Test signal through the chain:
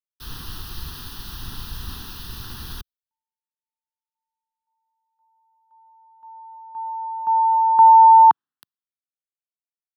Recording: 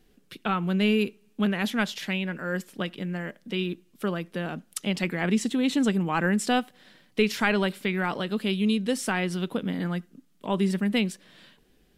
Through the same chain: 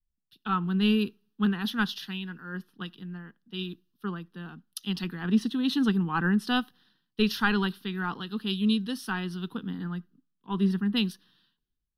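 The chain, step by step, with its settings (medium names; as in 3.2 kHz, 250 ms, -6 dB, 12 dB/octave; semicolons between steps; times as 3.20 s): static phaser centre 2.2 kHz, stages 6; three bands expanded up and down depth 100%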